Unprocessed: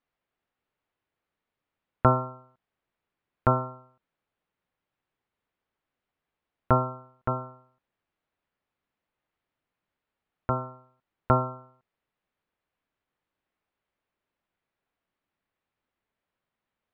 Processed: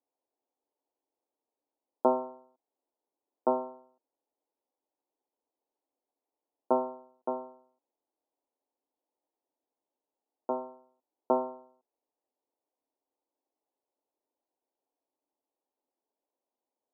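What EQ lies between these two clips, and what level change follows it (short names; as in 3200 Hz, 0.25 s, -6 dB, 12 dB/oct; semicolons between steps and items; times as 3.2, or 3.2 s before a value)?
elliptic band-pass 270–910 Hz, stop band 60 dB; 0.0 dB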